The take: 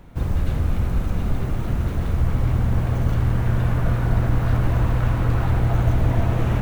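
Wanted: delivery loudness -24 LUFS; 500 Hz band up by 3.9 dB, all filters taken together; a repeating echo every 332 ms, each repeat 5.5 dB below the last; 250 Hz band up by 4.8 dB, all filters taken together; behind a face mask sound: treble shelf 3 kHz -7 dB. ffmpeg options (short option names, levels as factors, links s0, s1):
-af "equalizer=f=250:t=o:g=6,equalizer=f=500:t=o:g=3.5,highshelf=f=3000:g=-7,aecho=1:1:332|664|996|1328|1660|1992|2324:0.531|0.281|0.149|0.079|0.0419|0.0222|0.0118,volume=0.596"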